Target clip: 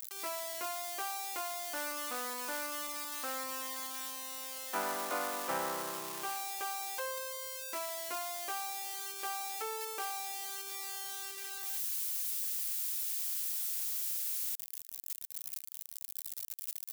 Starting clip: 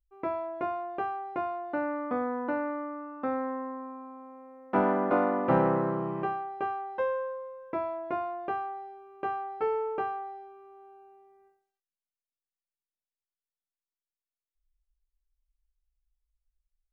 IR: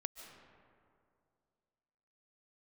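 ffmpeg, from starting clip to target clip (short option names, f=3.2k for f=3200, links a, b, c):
-af "aeval=exprs='val(0)+0.5*0.0178*sgn(val(0))':c=same,aderivative,volume=8dB"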